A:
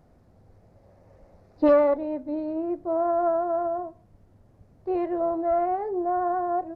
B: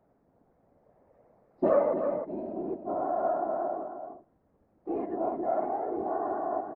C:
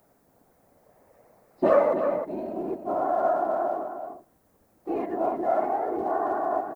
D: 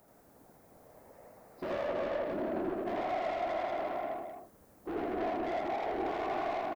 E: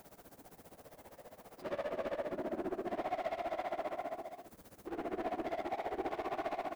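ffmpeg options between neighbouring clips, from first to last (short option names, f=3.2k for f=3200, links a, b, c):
-filter_complex "[0:a]acrossover=split=180 2100:gain=0.158 1 0.126[a][b][c];[a][b][c]amix=inputs=3:normalize=0,afftfilt=real='hypot(re,im)*cos(2*PI*random(0))':imag='hypot(re,im)*sin(2*PI*random(1))':win_size=512:overlap=0.75,asplit=2[d][e];[e]adelay=309,volume=-7dB,highshelf=f=4k:g=-6.95[f];[d][f]amix=inputs=2:normalize=0"
-af "crystalizer=i=9:c=0,volume=2dB"
-af "acompressor=threshold=-28dB:ratio=6,asoftclip=type=tanh:threshold=-34.5dB,aecho=1:1:81.63|262.4:0.891|0.501"
-af "aeval=exprs='val(0)+0.5*0.00355*sgn(val(0))':c=same,tremolo=f=15:d=0.85,volume=-1.5dB"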